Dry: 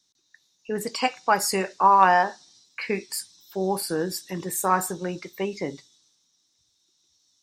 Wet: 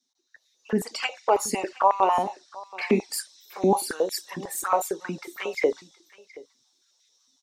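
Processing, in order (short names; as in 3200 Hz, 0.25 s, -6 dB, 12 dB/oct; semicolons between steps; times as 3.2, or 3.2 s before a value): AGC gain up to 9 dB; envelope flanger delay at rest 8.2 ms, full sweep at -15.5 dBFS; echo 0.72 s -20.5 dB; stepped high-pass 11 Hz 240–2000 Hz; gain -5.5 dB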